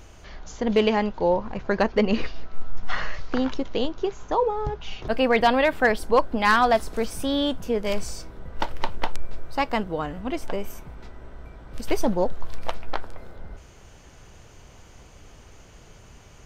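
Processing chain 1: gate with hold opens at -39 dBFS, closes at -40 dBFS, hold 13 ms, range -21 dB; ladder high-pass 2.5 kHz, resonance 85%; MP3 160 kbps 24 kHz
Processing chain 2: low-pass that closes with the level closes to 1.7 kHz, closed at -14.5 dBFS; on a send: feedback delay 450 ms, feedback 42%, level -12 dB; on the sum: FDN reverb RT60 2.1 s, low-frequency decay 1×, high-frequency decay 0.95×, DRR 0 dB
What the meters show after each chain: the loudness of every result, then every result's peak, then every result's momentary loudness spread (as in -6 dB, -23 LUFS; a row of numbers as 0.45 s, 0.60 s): -36.5 LUFS, -22.0 LUFS; -16.0 dBFS, -3.5 dBFS; 21 LU, 18 LU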